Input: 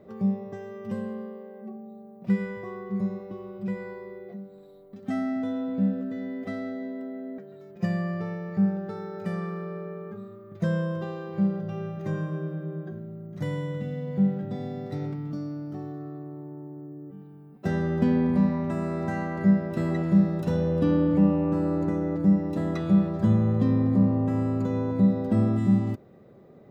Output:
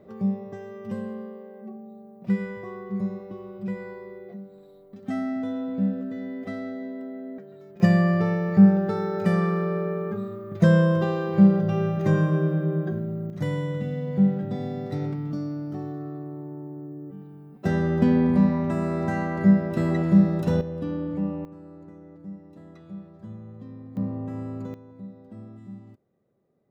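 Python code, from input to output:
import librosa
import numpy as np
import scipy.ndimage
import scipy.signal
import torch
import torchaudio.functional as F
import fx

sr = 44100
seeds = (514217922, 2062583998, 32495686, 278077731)

y = fx.gain(x, sr, db=fx.steps((0.0, 0.0), (7.8, 9.0), (13.3, 3.0), (20.61, -7.5), (21.45, -19.0), (23.97, -7.5), (24.74, -20.0)))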